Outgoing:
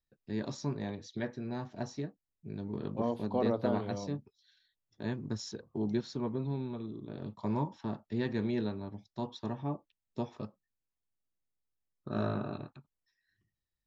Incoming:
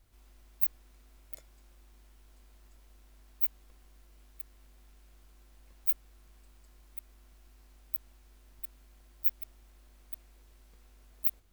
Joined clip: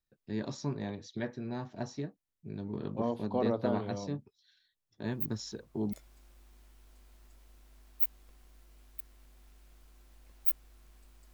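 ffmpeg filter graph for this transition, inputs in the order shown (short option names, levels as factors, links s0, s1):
-filter_complex "[1:a]asplit=2[s0][s1];[0:a]apad=whole_dur=11.33,atrim=end=11.33,atrim=end=5.932[s2];[s1]atrim=start=1.338:end=6.74[s3];[s0]atrim=start=0.46:end=1.34,asetpts=PTS-STARTPTS,volume=0.398,afade=t=in:d=0.004:c=hsin,afade=t=out:st=0.876:d=0.004:c=hsin,adelay=222705S[s4];[s2][s3]acrossfade=d=0.004:c1=hsin:c2=hsin[s5];[s5][s4]amix=inputs=2:normalize=0"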